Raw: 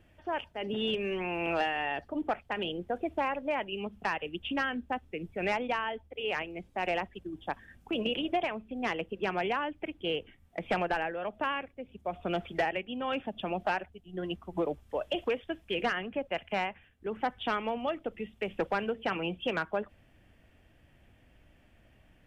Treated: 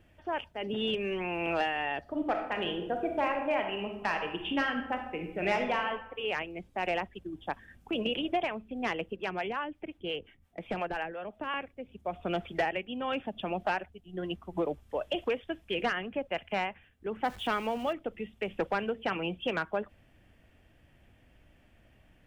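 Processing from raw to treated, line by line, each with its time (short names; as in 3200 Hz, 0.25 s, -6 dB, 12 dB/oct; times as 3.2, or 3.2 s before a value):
2–5.87 reverb throw, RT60 0.85 s, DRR 3.5 dB
9.16–11.54 harmonic tremolo 5.7 Hz, crossover 490 Hz
17.24–17.93 zero-crossing step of -44.5 dBFS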